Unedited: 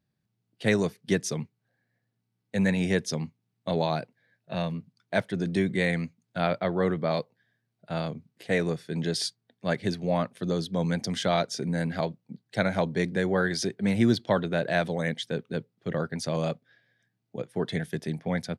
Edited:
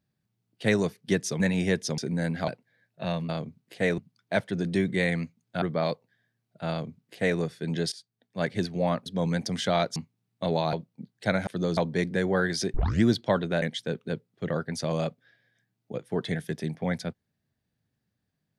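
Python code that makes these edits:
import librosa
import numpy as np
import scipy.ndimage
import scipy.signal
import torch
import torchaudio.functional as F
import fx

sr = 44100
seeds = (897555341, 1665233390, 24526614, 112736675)

y = fx.edit(x, sr, fx.cut(start_s=1.4, length_s=1.23),
    fx.swap(start_s=3.21, length_s=0.77, other_s=11.54, other_length_s=0.5),
    fx.cut(start_s=6.43, length_s=0.47),
    fx.duplicate(start_s=7.98, length_s=0.69, to_s=4.79),
    fx.fade_in_from(start_s=9.2, length_s=0.58, floor_db=-22.5),
    fx.move(start_s=10.34, length_s=0.3, to_s=12.78),
    fx.tape_start(start_s=13.75, length_s=0.29),
    fx.cut(start_s=14.63, length_s=0.43), tone=tone)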